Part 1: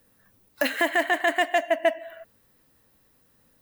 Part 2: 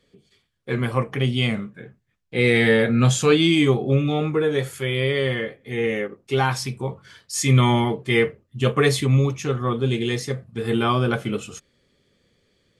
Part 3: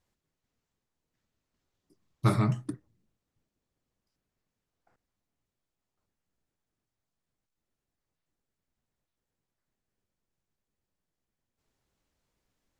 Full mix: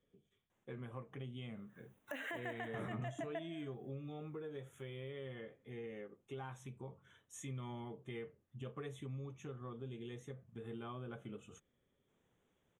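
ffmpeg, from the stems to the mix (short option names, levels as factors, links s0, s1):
-filter_complex "[0:a]agate=range=0.0224:threshold=0.00141:ratio=3:detection=peak,adelay=1500,volume=0.841[s0];[1:a]equalizer=f=2100:w=1.5:g=-4.5,acompressor=threshold=0.0501:ratio=1.5,volume=0.178,asplit=2[s1][s2];[2:a]asoftclip=type=tanh:threshold=0.0631,adelay=500,volume=1.26[s3];[s2]apad=whole_len=225498[s4];[s0][s4]sidechaincompress=threshold=0.00794:ratio=8:attack=42:release=459[s5];[s5][s3]amix=inputs=2:normalize=0,highpass=140,alimiter=level_in=1.06:limit=0.0631:level=0:latency=1:release=35,volume=0.944,volume=1[s6];[s1][s6]amix=inputs=2:normalize=0,asuperstop=centerf=4700:order=8:qfactor=2.2,highshelf=f=5200:g=-11.5,acompressor=threshold=0.00355:ratio=2"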